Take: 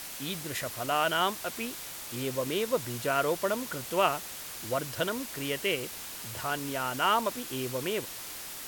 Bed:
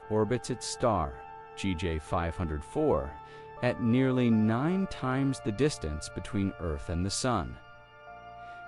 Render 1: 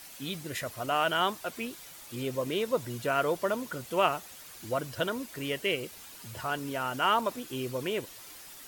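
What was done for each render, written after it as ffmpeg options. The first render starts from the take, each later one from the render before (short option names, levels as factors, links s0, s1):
-af "afftdn=nr=9:nf=-42"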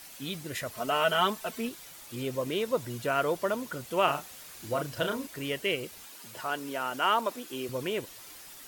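-filter_complex "[0:a]asettb=1/sr,asplit=3[s0][s1][s2];[s0]atrim=end=0.744[s3];[s1]atrim=start=0.74:end=1.69,asetpts=PTS-STARTPTS,afade=t=in:d=0.004:c=qsin,afade=t=out:st=0.946:d=0.004:c=qsin,aecho=1:1:4.6:0.74,atrim=end_sample=41895[s4];[s2]atrim=start=1.686[s5];[s3][s4]acrossfade=d=0.004:c1=hsin:c2=qsin[s6];[s6][s5]acrossfade=d=0.004:c1=qsin:c2=hsin,asettb=1/sr,asplit=3[s7][s8][s9];[s7]atrim=end=4.044[s10];[s8]atrim=start=4.04:end=5.27,asetpts=PTS-STARTPTS,afade=t=in:d=0.004:c=qsin,afade=t=out:st=1.226:d=0.004:c=qsin,asplit=2[s11][s12];[s12]adelay=35,volume=0.473[s13];[s11][s13]amix=inputs=2:normalize=0,atrim=end_sample=54243[s14];[s9]atrim=start=5.266[s15];[s10][s14]acrossfade=d=0.004:c1=hsin:c2=qsin[s16];[s16][s15]acrossfade=d=0.004:c1=qsin:c2=hsin,asettb=1/sr,asplit=3[s17][s18][s19];[s17]atrim=end=6.074[s20];[s18]atrim=start=6.07:end=7.69,asetpts=PTS-STARTPTS,afade=t=in:d=0.004:c=qsin,afade=t=out:st=1.616:d=0.004:c=qsin,highpass=230[s21];[s19]atrim=start=7.686[s22];[s20][s21]acrossfade=d=0.004:c1=hsin:c2=qsin[s23];[s23][s22]acrossfade=d=0.004:c1=qsin:c2=hsin"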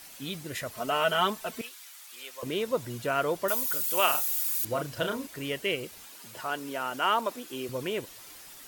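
-filter_complex "[0:a]asettb=1/sr,asplit=3[s0][s1][s2];[s0]atrim=end=1.614[s3];[s1]atrim=start=1.61:end=2.43,asetpts=PTS-STARTPTS,afade=t=in:d=0.004:c=qsin,afade=t=out:st=0.816:d=0.004:c=qsin,highpass=1200[s4];[s2]atrim=start=2.426[s5];[s3][s4]acrossfade=d=0.004:c1=hsin:c2=qsin[s6];[s6][s5]acrossfade=d=0.004:c1=qsin:c2=hsin,asettb=1/sr,asplit=3[s7][s8][s9];[s7]atrim=end=3.484[s10];[s8]atrim=start=3.48:end=4.65,asetpts=PTS-STARTPTS,afade=t=in:d=0.004:c=qsin,afade=t=out:st=1.166:d=0.004:c=qsin,aemphasis=mode=production:type=riaa[s11];[s9]atrim=start=4.646[s12];[s10][s11]acrossfade=d=0.004:c1=hsin:c2=qsin[s13];[s13][s12]acrossfade=d=0.004:c1=qsin:c2=hsin"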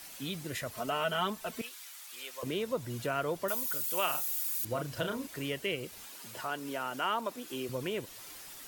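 -filter_complex "[0:a]acrossover=split=210[s0][s1];[s1]acompressor=threshold=0.0112:ratio=1.5[s2];[s0][s2]amix=inputs=2:normalize=0"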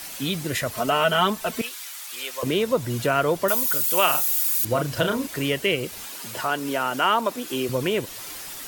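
-af "volume=3.76"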